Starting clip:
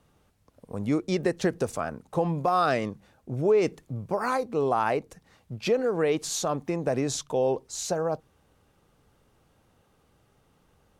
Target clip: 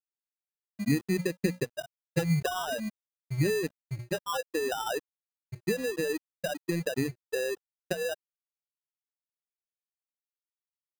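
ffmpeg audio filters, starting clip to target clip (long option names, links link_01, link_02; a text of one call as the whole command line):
ffmpeg -i in.wav -filter_complex "[0:a]lowpass=1300,afftfilt=real='re*gte(hypot(re,im),0.251)':imag='im*gte(hypot(re,im),0.251)':win_size=1024:overlap=0.75,acrossover=split=200[link_01][link_02];[link_02]acompressor=threshold=-35dB:ratio=16[link_03];[link_01][link_03]amix=inputs=2:normalize=0,bandreject=frequency=60:width_type=h:width=6,bandreject=frequency=120:width_type=h:width=6,bandreject=frequency=180:width_type=h:width=6,bandreject=frequency=240:width_type=h:width=6,acrusher=samples=20:mix=1:aa=0.000001,aeval=exprs='sgn(val(0))*max(abs(val(0))-0.00237,0)':channel_layout=same,volume=7dB" out.wav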